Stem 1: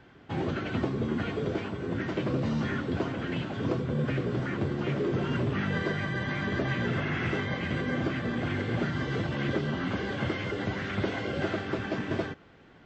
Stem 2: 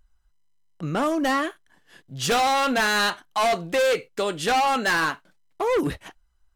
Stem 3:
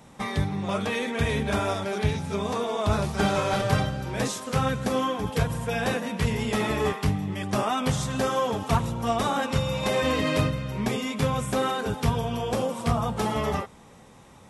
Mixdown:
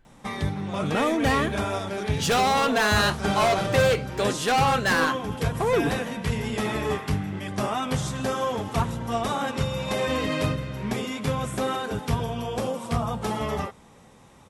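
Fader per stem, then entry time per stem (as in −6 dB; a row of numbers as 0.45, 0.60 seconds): −13.0, −1.0, −1.5 decibels; 0.00, 0.00, 0.05 seconds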